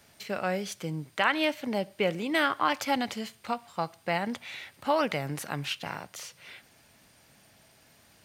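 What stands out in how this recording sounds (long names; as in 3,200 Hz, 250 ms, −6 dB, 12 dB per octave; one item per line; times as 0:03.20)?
background noise floor −61 dBFS
spectral slope −4.0 dB per octave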